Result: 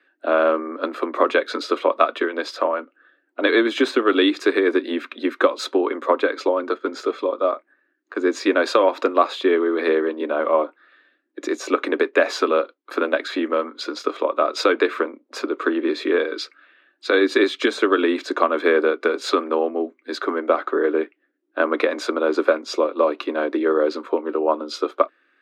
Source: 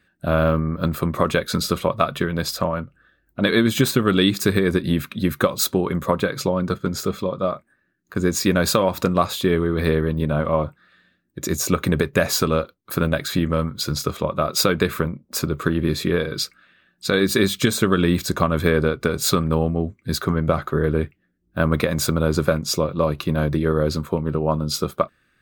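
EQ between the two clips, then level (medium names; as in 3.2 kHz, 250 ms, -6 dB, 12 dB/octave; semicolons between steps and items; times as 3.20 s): steep high-pass 270 Hz 72 dB/octave; low-pass 3 kHz 12 dB/octave; +3.0 dB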